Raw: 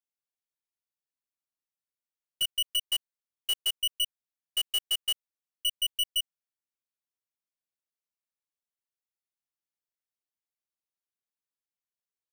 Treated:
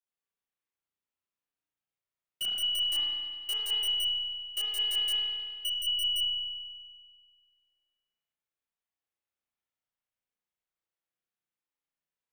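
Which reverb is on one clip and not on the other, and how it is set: spring tank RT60 1.8 s, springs 34 ms, chirp 75 ms, DRR -8.5 dB; gain -6 dB

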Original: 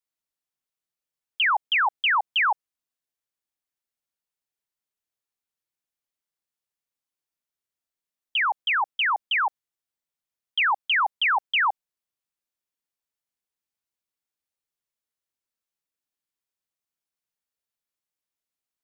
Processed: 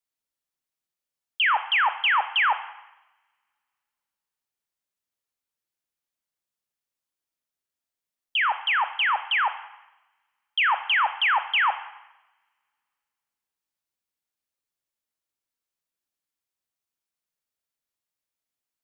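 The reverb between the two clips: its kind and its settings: two-slope reverb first 0.92 s, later 2.4 s, from -28 dB, DRR 9.5 dB

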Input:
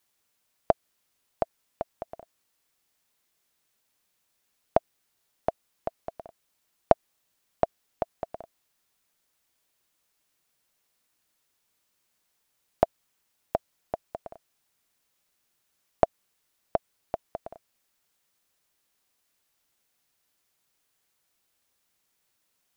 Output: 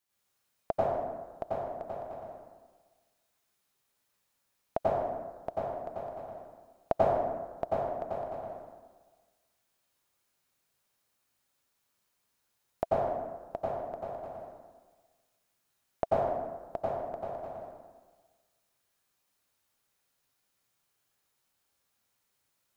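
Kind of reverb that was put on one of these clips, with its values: plate-style reverb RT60 1.4 s, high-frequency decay 0.55×, pre-delay 80 ms, DRR -8.5 dB; gain -10.5 dB

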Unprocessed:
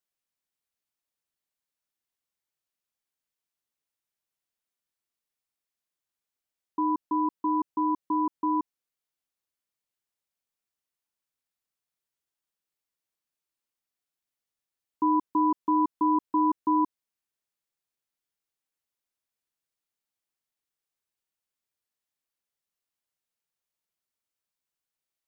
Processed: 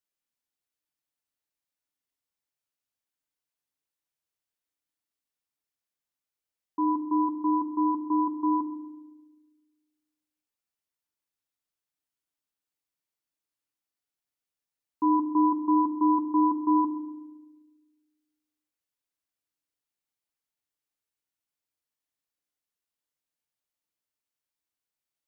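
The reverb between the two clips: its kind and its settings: FDN reverb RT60 1 s, low-frequency decay 1.6×, high-frequency decay 0.9×, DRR 6 dB; gain -3 dB

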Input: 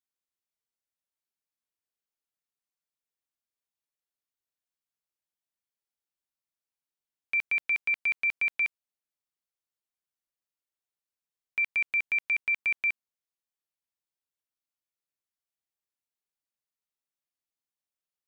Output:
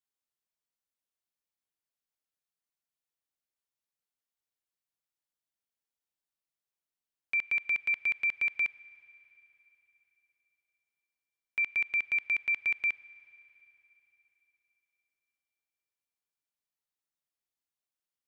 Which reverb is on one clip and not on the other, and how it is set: Schroeder reverb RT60 3.7 s, combs from 28 ms, DRR 19 dB; gain -2 dB

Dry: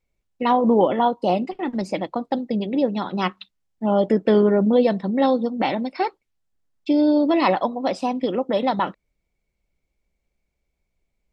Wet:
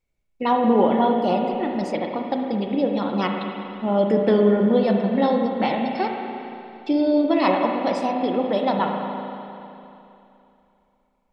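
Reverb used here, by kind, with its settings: spring tank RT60 2.9 s, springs 35/58 ms, chirp 50 ms, DRR 1.5 dB; gain -2 dB

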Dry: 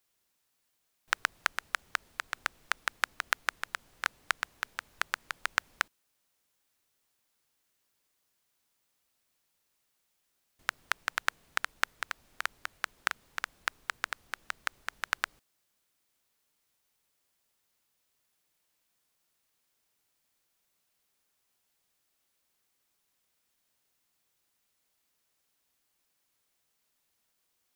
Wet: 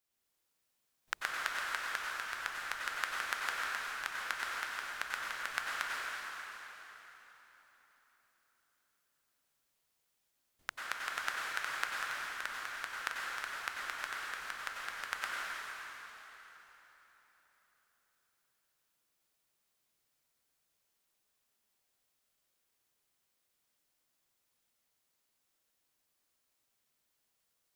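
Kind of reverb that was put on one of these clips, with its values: plate-style reverb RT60 4 s, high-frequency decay 0.85×, pre-delay 80 ms, DRR -4.5 dB; gain -8.5 dB

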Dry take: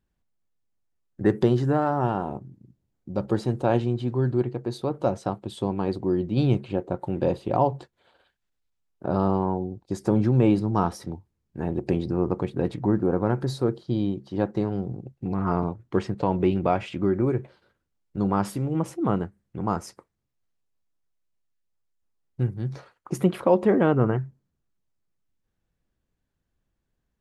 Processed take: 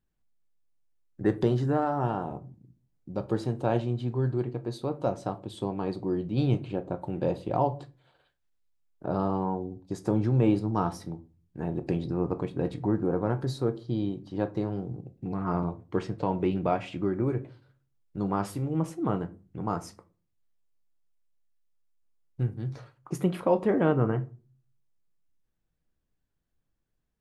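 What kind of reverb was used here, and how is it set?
shoebox room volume 190 m³, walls furnished, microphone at 0.48 m; gain -4.5 dB

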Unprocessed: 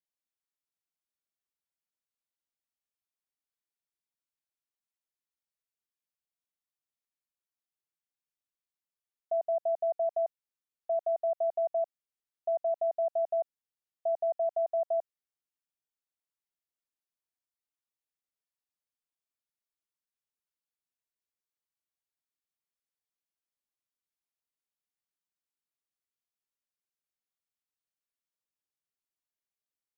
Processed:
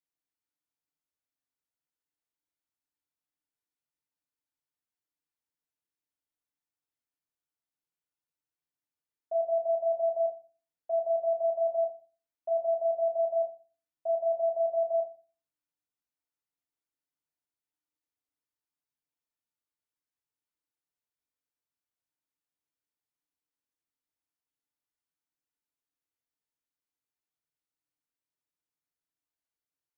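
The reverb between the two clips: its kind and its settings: FDN reverb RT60 0.37 s, low-frequency decay 1.55×, high-frequency decay 0.3×, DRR -1.5 dB; gain -5 dB

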